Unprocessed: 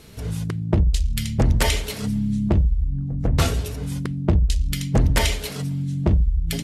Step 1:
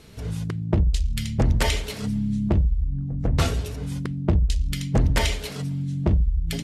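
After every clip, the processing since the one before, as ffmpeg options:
-af "highshelf=f=12k:g=-11,volume=-2dB"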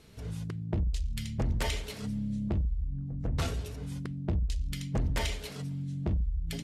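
-af "asoftclip=type=tanh:threshold=-13.5dB,volume=-8dB"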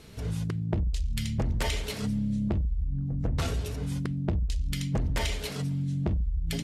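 -af "acompressor=threshold=-31dB:ratio=6,volume=6.5dB"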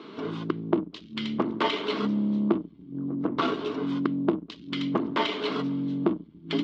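-filter_complex "[0:a]asplit=2[a][b];[b]asoftclip=type=tanh:threshold=-28.5dB,volume=-4dB[c];[a][c]amix=inputs=2:normalize=0,highpass=f=250:w=0.5412,highpass=f=250:w=1.3066,equalizer=f=320:t=q:w=4:g=6,equalizer=f=530:t=q:w=4:g=-9,equalizer=f=770:t=q:w=4:g=-7,equalizer=f=1.1k:t=q:w=4:g=7,equalizer=f=1.8k:t=q:w=4:g=-10,equalizer=f=2.5k:t=q:w=4:g=-8,lowpass=f=3.2k:w=0.5412,lowpass=f=3.2k:w=1.3066,volume=8dB"

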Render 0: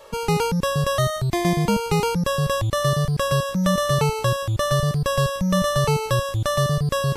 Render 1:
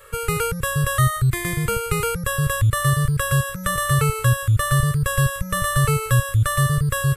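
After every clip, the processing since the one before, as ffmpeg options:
-af "firequalizer=gain_entry='entry(130,0);entry(200,-24);entry(470,-7);entry(750,-26);entry(1300,1);entry(3000,-8);entry(5700,-15);entry(8100,2)':delay=0.05:min_phase=1,volume=6.5dB"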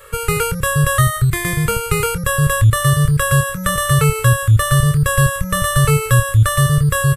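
-filter_complex "[0:a]asplit=2[a][b];[b]adelay=27,volume=-12dB[c];[a][c]amix=inputs=2:normalize=0,volume=5dB"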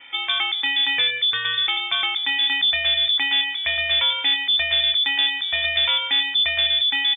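-filter_complex "[0:a]acrossover=split=2300[a][b];[a]asoftclip=type=tanh:threshold=-14.5dB[c];[b]aecho=1:1:113|226|339:0.133|0.0507|0.0193[d];[c][d]amix=inputs=2:normalize=0,lowpass=f=3.1k:t=q:w=0.5098,lowpass=f=3.1k:t=q:w=0.6013,lowpass=f=3.1k:t=q:w=0.9,lowpass=f=3.1k:t=q:w=2.563,afreqshift=-3600,volume=-2dB"

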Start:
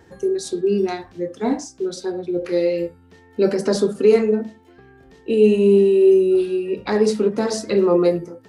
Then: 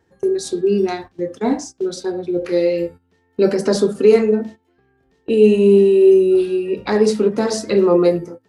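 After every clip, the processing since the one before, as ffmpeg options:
-af "agate=range=-15dB:threshold=-35dB:ratio=16:detection=peak,volume=2.5dB"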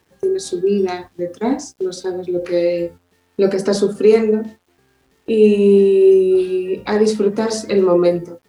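-af "acrusher=bits=9:mix=0:aa=0.000001"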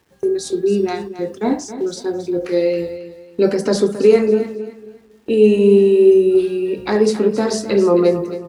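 -af "aecho=1:1:271|542|813:0.237|0.0688|0.0199"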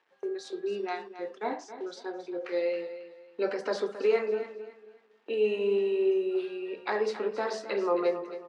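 -af "highpass=650,lowpass=3k,volume=-6dB"

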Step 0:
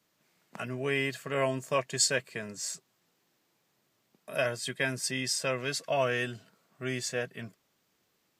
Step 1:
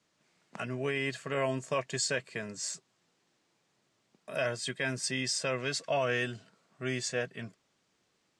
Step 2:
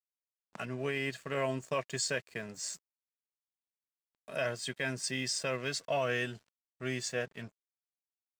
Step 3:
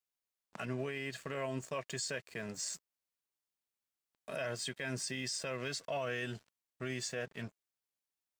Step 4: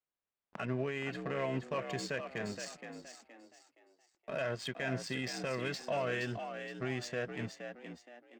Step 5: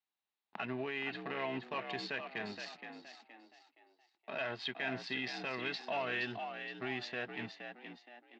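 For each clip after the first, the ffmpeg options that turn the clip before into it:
-af "alimiter=limit=-21dB:level=0:latency=1:release=38,lowpass=f=8.8k:w=0.5412,lowpass=f=8.8k:w=1.3066"
-af "aeval=exprs='sgn(val(0))*max(abs(val(0))-0.002,0)':c=same,volume=-1.5dB"
-af "alimiter=level_in=7.5dB:limit=-24dB:level=0:latency=1:release=86,volume=-7.5dB,volume=2.5dB"
-filter_complex "[0:a]adynamicsmooth=sensitivity=7:basefreq=2.4k,asplit=5[a][b][c][d][e];[b]adelay=470,afreqshift=58,volume=-8dB[f];[c]adelay=940,afreqshift=116,volume=-17.6dB[g];[d]adelay=1410,afreqshift=174,volume=-27.3dB[h];[e]adelay=1880,afreqshift=232,volume=-36.9dB[i];[a][f][g][h][i]amix=inputs=5:normalize=0,volume=3dB"
-af "highpass=150,equalizer=f=150:t=q:w=4:g=-9,equalizer=f=530:t=q:w=4:g=-9,equalizer=f=830:t=q:w=4:g=8,equalizer=f=1.9k:t=q:w=4:g=3,equalizer=f=2.7k:t=q:w=4:g=5,equalizer=f=3.9k:t=q:w=4:g=9,lowpass=f=4.7k:w=0.5412,lowpass=f=4.7k:w=1.3066,volume=-2dB"

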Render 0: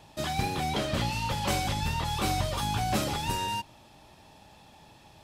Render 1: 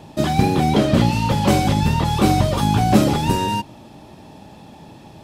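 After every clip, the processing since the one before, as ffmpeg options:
-af "equalizer=f=240:t=o:w=2.8:g=12.5,volume=5.5dB"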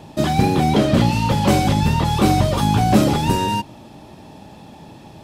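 -af "asoftclip=type=tanh:threshold=-3.5dB,volume=1dB"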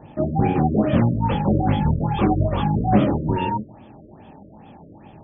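-af "flanger=delay=18.5:depth=7.4:speed=2.4,aresample=11025,aresample=44100,afftfilt=real='re*lt(b*sr/1024,610*pow(3600/610,0.5+0.5*sin(2*PI*2.4*pts/sr)))':imag='im*lt(b*sr/1024,610*pow(3600/610,0.5+0.5*sin(2*PI*2.4*pts/sr)))':win_size=1024:overlap=0.75"

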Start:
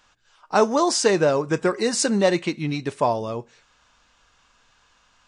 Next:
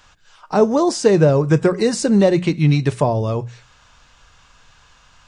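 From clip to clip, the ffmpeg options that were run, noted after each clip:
-filter_complex "[0:a]lowshelf=f=180:t=q:w=1.5:g=6.5,bandreject=f=60:t=h:w=6,bandreject=f=120:t=h:w=6,bandreject=f=180:t=h:w=6,acrossover=split=570[a][b];[b]acompressor=threshold=-34dB:ratio=4[c];[a][c]amix=inputs=2:normalize=0,volume=8dB"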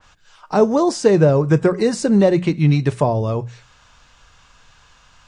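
-af "adynamicequalizer=threshold=0.02:dfrequency=2300:dqfactor=0.7:tfrequency=2300:tqfactor=0.7:attack=5:release=100:ratio=0.375:range=2:mode=cutabove:tftype=highshelf"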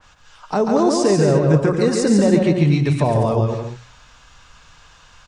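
-af "alimiter=limit=-10.5dB:level=0:latency=1:release=70,aecho=1:1:140|231|290.2|328.6|353.6:0.631|0.398|0.251|0.158|0.1,aeval=exprs='0.75*(cos(1*acos(clip(val(0)/0.75,-1,1)))-cos(1*PI/2))+0.0473*(cos(3*acos(clip(val(0)/0.75,-1,1)))-cos(3*PI/2))':c=same,volume=3dB"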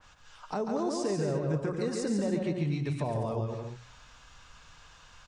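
-af "acompressor=threshold=-36dB:ratio=1.5,volume=-6.5dB"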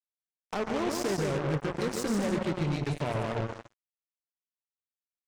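-af "acrusher=bits=4:mix=0:aa=0.5"

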